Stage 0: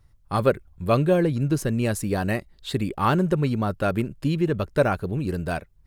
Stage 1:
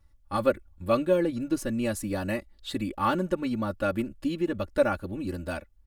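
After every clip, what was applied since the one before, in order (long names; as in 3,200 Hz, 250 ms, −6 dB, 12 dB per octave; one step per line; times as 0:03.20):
comb filter 3.5 ms, depth 95%
level −7 dB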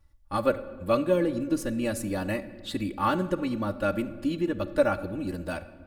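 rectangular room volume 1,800 cubic metres, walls mixed, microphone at 0.48 metres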